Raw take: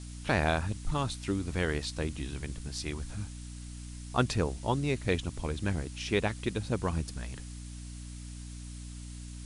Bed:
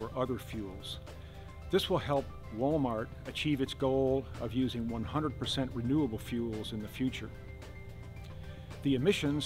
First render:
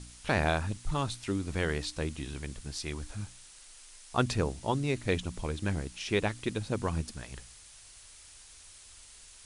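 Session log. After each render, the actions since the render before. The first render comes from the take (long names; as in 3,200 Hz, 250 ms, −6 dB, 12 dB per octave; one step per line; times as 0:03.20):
hum removal 60 Hz, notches 5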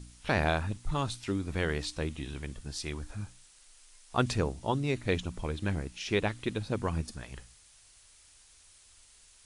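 noise reduction from a noise print 6 dB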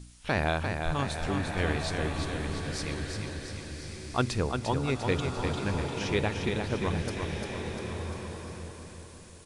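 on a send: repeating echo 348 ms, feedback 56%, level −5.5 dB
on the sum: slow-attack reverb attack 1,310 ms, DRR 5 dB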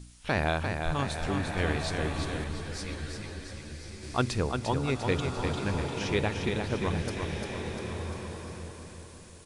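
0:02.44–0:04.03: string-ensemble chorus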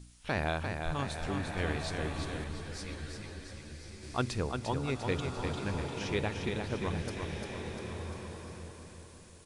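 level −4.5 dB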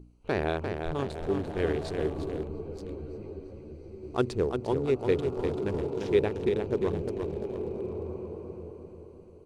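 adaptive Wiener filter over 25 samples
parametric band 400 Hz +13.5 dB 0.7 octaves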